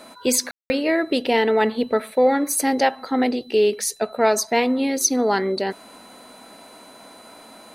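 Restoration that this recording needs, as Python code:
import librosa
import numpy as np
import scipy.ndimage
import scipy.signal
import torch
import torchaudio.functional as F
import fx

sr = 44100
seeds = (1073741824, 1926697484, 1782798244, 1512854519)

y = fx.notch(x, sr, hz=4000.0, q=30.0)
y = fx.fix_ambience(y, sr, seeds[0], print_start_s=6.55, print_end_s=7.05, start_s=0.51, end_s=0.7)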